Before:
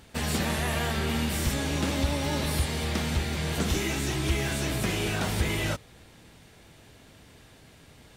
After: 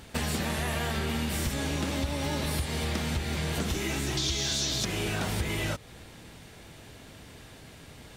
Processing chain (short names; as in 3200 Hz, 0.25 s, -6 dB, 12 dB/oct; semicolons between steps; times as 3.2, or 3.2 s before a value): 4.17–4.85 band shelf 4800 Hz +15.5 dB 1.3 oct; compressor 5:1, threshold -32 dBFS, peak gain reduction 12.5 dB; gain +4.5 dB